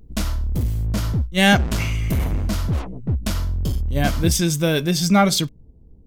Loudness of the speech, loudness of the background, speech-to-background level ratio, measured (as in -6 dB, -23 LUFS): -19.5 LUFS, -24.5 LUFS, 5.0 dB